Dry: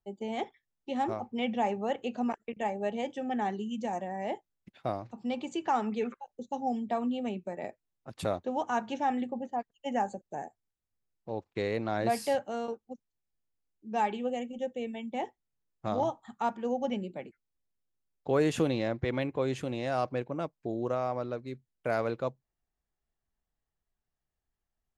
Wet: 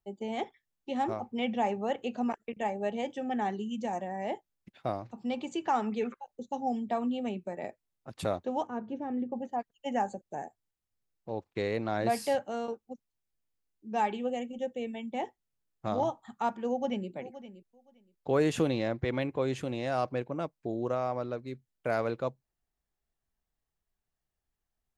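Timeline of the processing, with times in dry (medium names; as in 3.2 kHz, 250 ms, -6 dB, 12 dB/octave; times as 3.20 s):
8.67–9.32 s: FFT filter 470 Hz 0 dB, 800 Hz -13 dB, 1.1 kHz -10 dB, 11 kHz -27 dB
16.69–17.10 s: echo throw 520 ms, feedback 15%, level -14.5 dB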